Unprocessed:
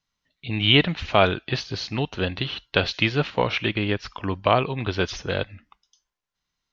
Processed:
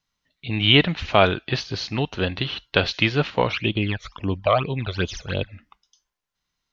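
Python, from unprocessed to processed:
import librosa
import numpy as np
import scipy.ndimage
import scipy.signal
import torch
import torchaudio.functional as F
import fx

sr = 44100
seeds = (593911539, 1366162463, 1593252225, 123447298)

y = fx.phaser_stages(x, sr, stages=12, low_hz=270.0, high_hz=1800.0, hz=fx.line((3.51, 1.4), (5.51, 3.8)), feedback_pct=40, at=(3.51, 5.51), fade=0.02)
y = y * 10.0 ** (1.5 / 20.0)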